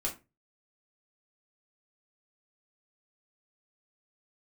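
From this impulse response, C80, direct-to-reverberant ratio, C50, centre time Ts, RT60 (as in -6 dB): 19.5 dB, -3.0 dB, 12.5 dB, 18 ms, 0.25 s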